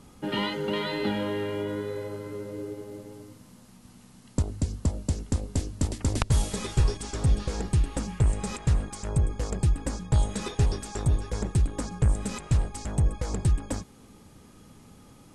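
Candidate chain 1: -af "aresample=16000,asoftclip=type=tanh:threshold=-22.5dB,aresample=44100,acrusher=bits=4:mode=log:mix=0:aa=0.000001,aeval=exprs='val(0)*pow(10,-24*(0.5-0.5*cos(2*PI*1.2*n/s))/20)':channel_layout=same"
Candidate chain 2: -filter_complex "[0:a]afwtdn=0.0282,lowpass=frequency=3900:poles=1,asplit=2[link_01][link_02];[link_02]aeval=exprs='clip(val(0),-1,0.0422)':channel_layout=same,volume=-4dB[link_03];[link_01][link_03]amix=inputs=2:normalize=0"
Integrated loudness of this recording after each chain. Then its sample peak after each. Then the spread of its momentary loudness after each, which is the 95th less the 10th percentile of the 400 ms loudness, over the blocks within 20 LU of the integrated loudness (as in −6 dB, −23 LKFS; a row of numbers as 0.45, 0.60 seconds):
−38.0, −26.5 LKFS; −20.5, −7.5 dBFS; 19, 8 LU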